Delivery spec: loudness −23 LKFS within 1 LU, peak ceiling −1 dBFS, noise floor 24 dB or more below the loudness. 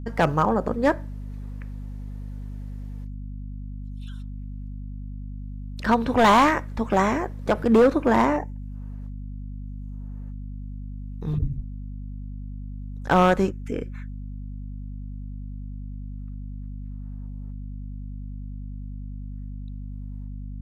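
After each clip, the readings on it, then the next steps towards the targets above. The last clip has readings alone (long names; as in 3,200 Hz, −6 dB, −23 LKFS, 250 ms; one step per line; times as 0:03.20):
share of clipped samples 0.5%; peaks flattened at −11.5 dBFS; mains hum 50 Hz; hum harmonics up to 250 Hz; level of the hum −32 dBFS; integrated loudness −22.0 LKFS; sample peak −11.5 dBFS; target loudness −23.0 LKFS
→ clipped peaks rebuilt −11.5 dBFS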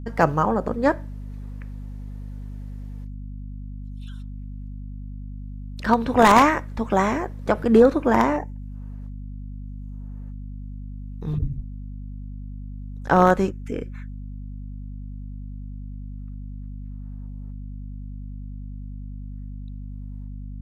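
share of clipped samples 0.0%; mains hum 50 Hz; hum harmonics up to 250 Hz; level of the hum −32 dBFS
→ hum removal 50 Hz, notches 5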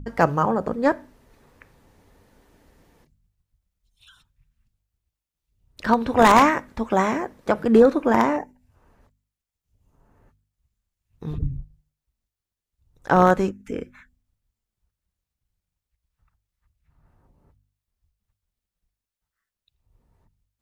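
mains hum none found; integrated loudness −20.5 LKFS; sample peak −1.5 dBFS; target loudness −23.0 LKFS
→ level −2.5 dB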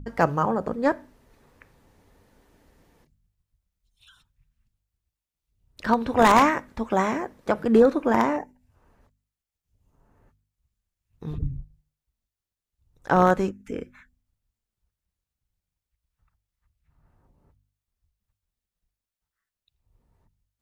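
integrated loudness −22.5 LKFS; sample peak −4.0 dBFS; background noise floor −89 dBFS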